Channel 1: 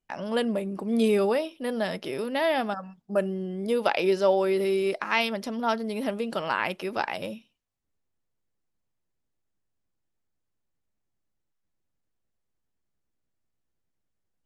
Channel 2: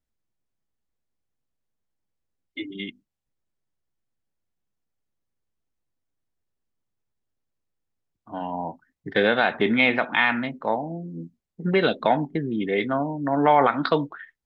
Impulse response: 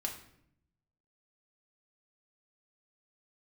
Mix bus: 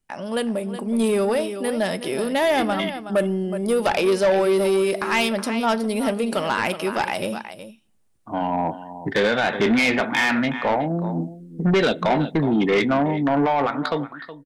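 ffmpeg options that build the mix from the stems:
-filter_complex "[0:a]equalizer=f=9.1k:w=2.9:g=12.5,volume=1dB,asplit=3[a][b][c];[b]volume=-13.5dB[d];[c]volume=-11.5dB[e];[1:a]alimiter=limit=-13dB:level=0:latency=1:release=354,volume=1.5dB,asplit=3[f][g][h];[g]volume=-23.5dB[i];[h]volume=-15dB[j];[2:a]atrim=start_sample=2205[k];[d][i]amix=inputs=2:normalize=0[l];[l][k]afir=irnorm=-1:irlink=0[m];[e][j]amix=inputs=2:normalize=0,aecho=0:1:369:1[n];[a][f][m][n]amix=inputs=4:normalize=0,dynaudnorm=f=280:g=13:m=11.5dB,asoftclip=type=tanh:threshold=-13.5dB"

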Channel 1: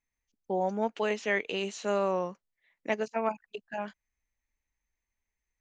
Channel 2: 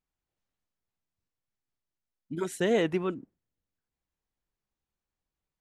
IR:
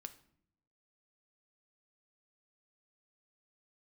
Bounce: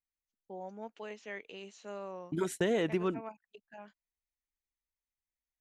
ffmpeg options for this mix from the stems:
-filter_complex "[0:a]volume=-14.5dB[a];[1:a]agate=range=-24dB:threshold=-37dB:ratio=16:detection=peak,volume=1dB[b];[a][b]amix=inputs=2:normalize=0,acompressor=threshold=-27dB:ratio=4"

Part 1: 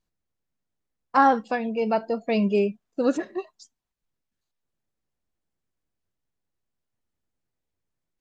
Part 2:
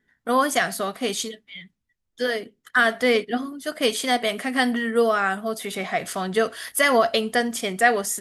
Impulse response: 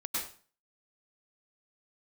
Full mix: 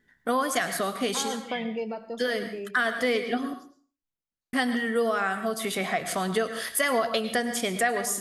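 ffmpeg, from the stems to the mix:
-filter_complex "[0:a]alimiter=limit=-16dB:level=0:latency=1,volume=-2.5dB,afade=t=out:st=1.7:d=0.22:silence=0.398107,asplit=2[a][b];[b]volume=-16.5dB[c];[1:a]volume=1dB,asplit=3[d][e][f];[d]atrim=end=3.54,asetpts=PTS-STARTPTS,afade=t=out:st=3.536:d=0.004:c=hsin[g];[e]atrim=start=3.54:end=4.53,asetpts=PTS-STARTPTS,volume=0[h];[f]atrim=start=4.53,asetpts=PTS-STARTPTS,afade=t=in:d=0.004:c=hsin[i];[g][h][i]concat=n=3:v=0:a=1,asplit=3[j][k][l];[k]volume=-13dB[m];[l]apad=whole_len=361926[n];[a][n]sidechaincompress=threshold=-24dB:ratio=8:attack=16:release=1240[o];[2:a]atrim=start_sample=2205[p];[c][m]amix=inputs=2:normalize=0[q];[q][p]afir=irnorm=-1:irlink=0[r];[o][j][r]amix=inputs=3:normalize=0,acompressor=threshold=-26dB:ratio=2.5"

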